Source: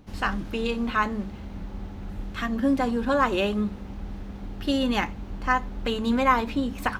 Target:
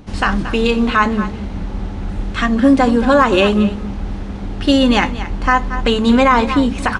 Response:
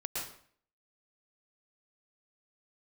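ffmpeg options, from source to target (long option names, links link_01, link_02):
-filter_complex "[0:a]aresample=22050,aresample=44100,asplit=2[link_01][link_02];[link_02]aecho=0:1:227:0.188[link_03];[link_01][link_03]amix=inputs=2:normalize=0,alimiter=level_in=13dB:limit=-1dB:release=50:level=0:latency=1,volume=-1dB"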